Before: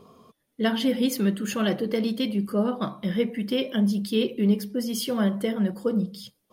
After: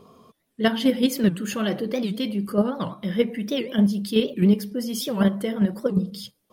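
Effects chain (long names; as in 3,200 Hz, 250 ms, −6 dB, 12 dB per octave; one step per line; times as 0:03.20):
in parallel at +1 dB: output level in coarse steps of 21 dB
on the sum: wow of a warped record 78 rpm, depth 250 cents
level −1.5 dB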